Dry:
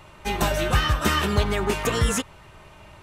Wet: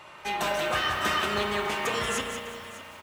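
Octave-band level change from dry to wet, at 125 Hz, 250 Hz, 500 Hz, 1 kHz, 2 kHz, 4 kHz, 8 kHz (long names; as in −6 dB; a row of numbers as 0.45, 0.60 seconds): −16.5, −9.0, −4.0, −1.5, −1.0, −2.0, −6.0 decibels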